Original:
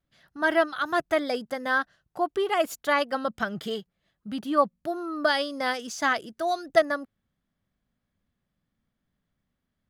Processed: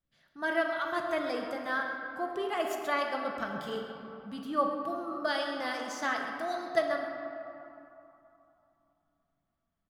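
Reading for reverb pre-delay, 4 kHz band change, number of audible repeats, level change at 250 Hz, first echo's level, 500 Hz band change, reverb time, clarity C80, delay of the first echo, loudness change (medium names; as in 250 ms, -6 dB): 3 ms, -7.0 dB, 1, -5.5 dB, -12.0 dB, -6.0 dB, 3.0 s, 3.5 dB, 131 ms, -6.0 dB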